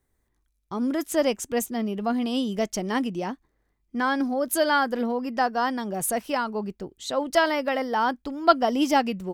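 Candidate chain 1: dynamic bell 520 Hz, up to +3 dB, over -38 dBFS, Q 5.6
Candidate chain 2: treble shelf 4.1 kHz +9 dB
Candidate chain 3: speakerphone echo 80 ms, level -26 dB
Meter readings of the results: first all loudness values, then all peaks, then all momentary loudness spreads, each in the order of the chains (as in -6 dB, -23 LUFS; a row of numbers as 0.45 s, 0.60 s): -25.0 LUFS, -24.0 LUFS, -25.5 LUFS; -3.5 dBFS, -2.0 dBFS, -3.5 dBFS; 9 LU, 9 LU, 8 LU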